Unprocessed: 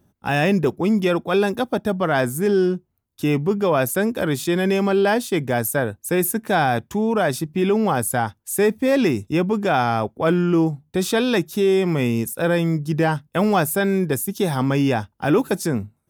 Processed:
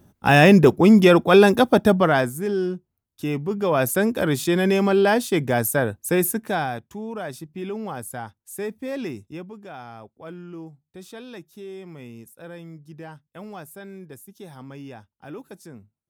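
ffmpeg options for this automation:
ffmpeg -i in.wav -af "volume=12dB,afade=type=out:start_time=1.88:duration=0.44:silence=0.251189,afade=type=in:start_time=3.48:duration=0.42:silence=0.501187,afade=type=out:start_time=6.14:duration=0.67:silence=0.251189,afade=type=out:start_time=9.11:duration=0.44:silence=0.398107" out.wav

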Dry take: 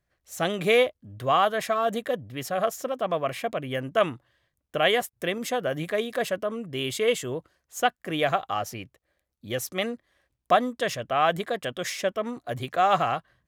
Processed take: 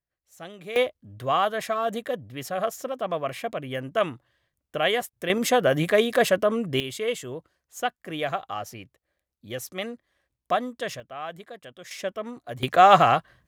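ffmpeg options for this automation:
ffmpeg -i in.wav -af "asetnsamples=nb_out_samples=441:pad=0,asendcmd='0.76 volume volume -1.5dB;5.3 volume volume 7dB;6.8 volume volume -4dB;11 volume volume -13dB;11.91 volume volume -4dB;12.63 volume volume 7dB',volume=-14.5dB" out.wav

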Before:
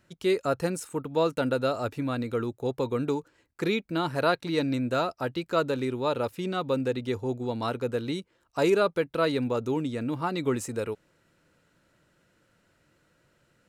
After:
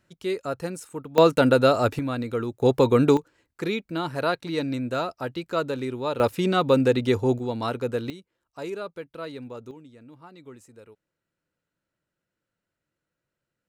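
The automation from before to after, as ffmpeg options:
ffmpeg -i in.wav -af "asetnsamples=nb_out_samples=441:pad=0,asendcmd='1.18 volume volume 8.5dB;1.99 volume volume 1.5dB;2.62 volume volume 10dB;3.17 volume volume -0.5dB;6.2 volume volume 8dB;7.39 volume volume 2dB;8.1 volume volume -10.5dB;9.71 volume volume -18dB',volume=-3dB" out.wav

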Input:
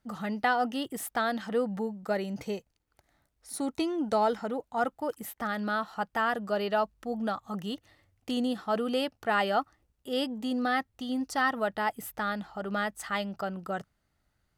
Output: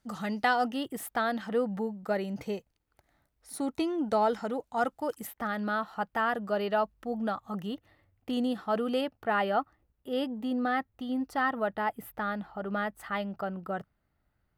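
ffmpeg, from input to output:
ffmpeg -i in.wav -af "asetnsamples=nb_out_samples=441:pad=0,asendcmd='0.68 equalizer g -5;4.33 equalizer g 2;5.27 equalizer g -7;7.67 equalizer g -14;8.33 equalizer g -6.5;9.01 equalizer g -14.5',equalizer=frequency=6700:width_type=o:width=1.7:gain=5" out.wav

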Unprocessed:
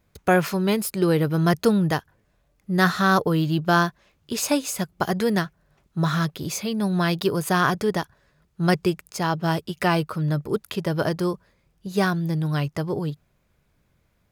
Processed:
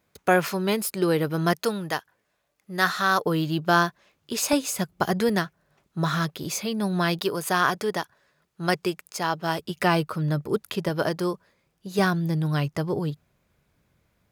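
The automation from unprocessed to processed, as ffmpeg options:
ffmpeg -i in.wav -af "asetnsamples=nb_out_samples=441:pad=0,asendcmd='1.53 highpass f 740;3.25 highpass f 230;4.53 highpass f 73;5.29 highpass f 190;7.19 highpass f 440;9.59 highpass f 110;10.89 highpass f 240;11.99 highpass f 62',highpass=frequency=270:poles=1" out.wav

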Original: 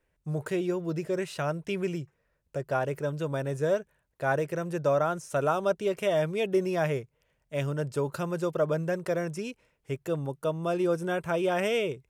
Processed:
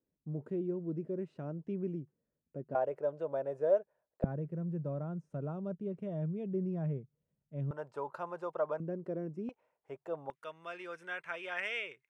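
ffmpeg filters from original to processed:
ffmpeg -i in.wav -af "asetnsamples=nb_out_samples=441:pad=0,asendcmd='2.75 bandpass f 620;4.24 bandpass f 180;7.71 bandpass f 890;8.8 bandpass f 260;9.49 bandpass f 780;10.3 bandpass f 2000',bandpass=frequency=240:width_type=q:width=2.3:csg=0" out.wav

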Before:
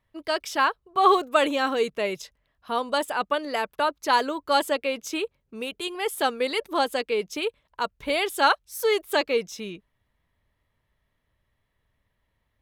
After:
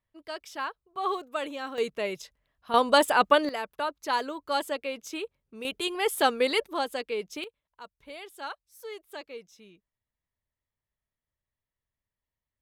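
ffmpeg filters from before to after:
ffmpeg -i in.wav -af "asetnsamples=nb_out_samples=441:pad=0,asendcmd='1.78 volume volume -4dB;2.74 volume volume 5dB;3.49 volume volume -6.5dB;5.65 volume volume 1dB;6.64 volume volume -6dB;7.44 volume volume -18dB',volume=-11.5dB" out.wav

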